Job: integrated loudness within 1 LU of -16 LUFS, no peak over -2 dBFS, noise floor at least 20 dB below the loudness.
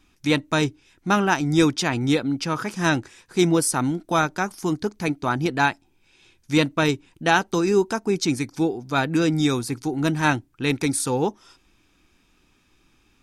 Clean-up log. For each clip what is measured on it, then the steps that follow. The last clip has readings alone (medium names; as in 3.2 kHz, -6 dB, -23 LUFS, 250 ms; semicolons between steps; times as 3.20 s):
loudness -22.5 LUFS; peak level -5.0 dBFS; loudness target -16.0 LUFS
-> trim +6.5 dB; peak limiter -2 dBFS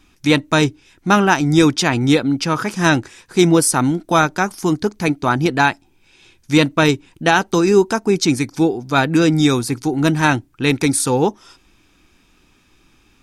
loudness -16.5 LUFS; peak level -2.0 dBFS; noise floor -56 dBFS